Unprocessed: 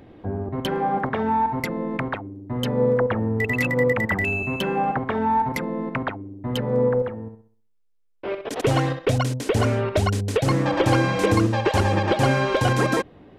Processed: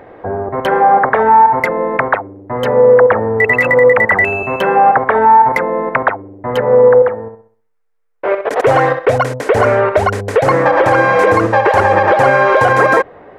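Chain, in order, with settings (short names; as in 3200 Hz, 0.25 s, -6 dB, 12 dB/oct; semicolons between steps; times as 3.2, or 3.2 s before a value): band shelf 950 Hz +15 dB 2.7 oct; limiter -2 dBFS, peak gain reduction 7.5 dB; gain +1 dB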